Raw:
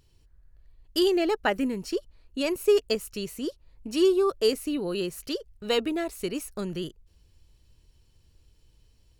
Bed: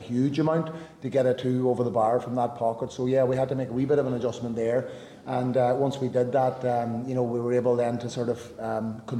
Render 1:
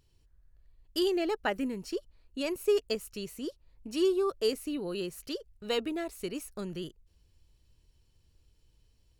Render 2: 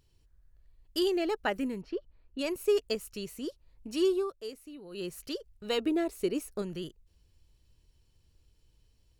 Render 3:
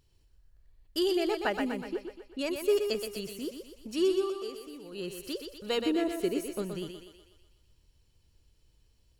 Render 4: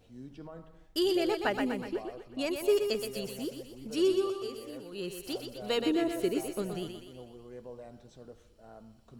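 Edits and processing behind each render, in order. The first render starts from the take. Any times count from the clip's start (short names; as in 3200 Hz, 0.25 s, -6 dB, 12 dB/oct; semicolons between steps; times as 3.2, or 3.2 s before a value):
gain -5.5 dB
1.81–2.39 air absorption 320 m; 4.16–5.07 dip -12 dB, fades 0.17 s; 5.85–6.62 bell 390 Hz +7.5 dB 1.3 oct
thinning echo 0.123 s, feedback 57%, high-pass 290 Hz, level -5.5 dB
add bed -22.5 dB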